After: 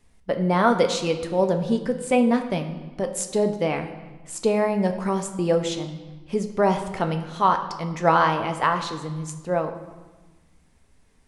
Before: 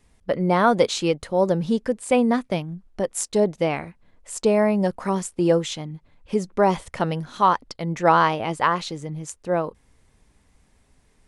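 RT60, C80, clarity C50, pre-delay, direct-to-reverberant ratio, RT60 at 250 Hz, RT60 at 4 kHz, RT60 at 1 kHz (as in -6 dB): 1.3 s, 11.5 dB, 10.0 dB, 4 ms, 5.5 dB, 1.6 s, 1.1 s, 1.3 s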